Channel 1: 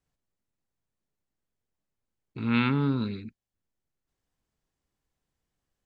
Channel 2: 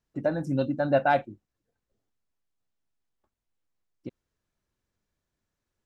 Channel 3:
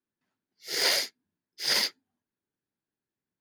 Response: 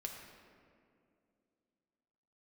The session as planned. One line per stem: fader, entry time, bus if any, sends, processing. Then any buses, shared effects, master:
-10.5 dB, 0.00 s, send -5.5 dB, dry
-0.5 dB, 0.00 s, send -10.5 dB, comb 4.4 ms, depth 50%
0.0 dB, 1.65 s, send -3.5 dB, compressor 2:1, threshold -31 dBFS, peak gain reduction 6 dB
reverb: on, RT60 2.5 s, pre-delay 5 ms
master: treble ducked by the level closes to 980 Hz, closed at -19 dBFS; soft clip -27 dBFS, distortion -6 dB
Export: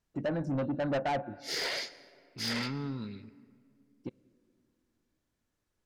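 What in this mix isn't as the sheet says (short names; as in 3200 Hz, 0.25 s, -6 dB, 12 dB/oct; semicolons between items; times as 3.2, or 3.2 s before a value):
stem 2: missing comb 4.4 ms, depth 50%; stem 3: entry 1.65 s -> 0.80 s; reverb return -6.5 dB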